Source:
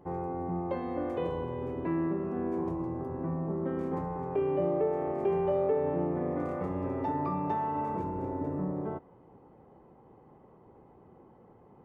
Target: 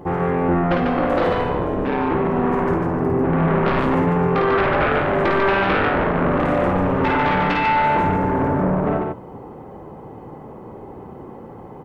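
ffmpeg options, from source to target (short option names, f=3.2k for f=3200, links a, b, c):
-filter_complex "[0:a]asettb=1/sr,asplit=3[a][b][c];[a]atrim=end=3.334[d];[b]atrim=start=3.33:end=3.8,asetpts=PTS-STARTPTS,afade=t=in:d=0.004:c=qsin,afade=t=out:st=0.466:d=0.004:c=qsin,equalizer=f=1.5k:w=0.44:g=6.5[e];[c]atrim=start=3.796[f];[d][e]acrossfade=d=0.004:c1=hsin:c2=qsin[g];[g][f]acrossfade=d=0.004:c1=qsin:c2=hsin,aeval=exprs='0.133*sin(PI/2*4.47*val(0)/0.133)':c=same,asettb=1/sr,asplit=3[h][i][j];[h]atrim=end=1.494[k];[i]atrim=start=1.49:end=2.11,asetpts=PTS-STARTPTS,afade=t=in:d=0.004:c=qsin,afade=t=out:st=0.616:d=0.004:c=qsin,aeval=exprs='val(0)*sin(2*PI*67*n/s)':c=same[l];[j]atrim=start=2.106[m];[k][l]acrossfade=d=0.004:c1=hsin:c2=qsin[n];[n][m]acrossfade=d=0.004:c1=qsin:c2=hsin,aecho=1:1:53|145:0.631|0.668"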